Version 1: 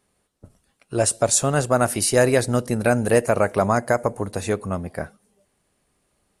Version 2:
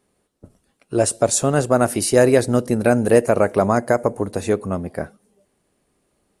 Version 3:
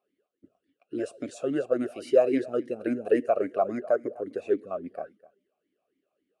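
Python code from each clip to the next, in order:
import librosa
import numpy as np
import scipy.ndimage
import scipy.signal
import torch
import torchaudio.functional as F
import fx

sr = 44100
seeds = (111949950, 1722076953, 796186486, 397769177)

y1 = fx.peak_eq(x, sr, hz=330.0, db=6.5, octaves=1.9)
y1 = y1 * librosa.db_to_amplitude(-1.0)
y2 = y1 + 10.0 ** (-22.0 / 20.0) * np.pad(y1, (int(252 * sr / 1000.0), 0))[:len(y1)]
y2 = fx.vowel_sweep(y2, sr, vowels='a-i', hz=3.6)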